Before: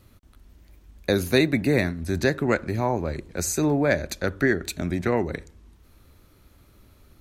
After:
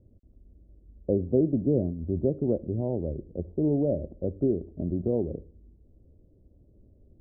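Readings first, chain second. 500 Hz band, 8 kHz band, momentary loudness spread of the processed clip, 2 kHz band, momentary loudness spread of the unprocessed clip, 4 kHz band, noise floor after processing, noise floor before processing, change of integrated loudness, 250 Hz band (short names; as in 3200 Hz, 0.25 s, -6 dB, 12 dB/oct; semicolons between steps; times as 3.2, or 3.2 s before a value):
-3.0 dB, under -40 dB, 10 LU, under -40 dB, 8 LU, under -40 dB, -60 dBFS, -56 dBFS, -4.0 dB, -2.5 dB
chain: steep low-pass 590 Hz 36 dB/oct; gain -2.5 dB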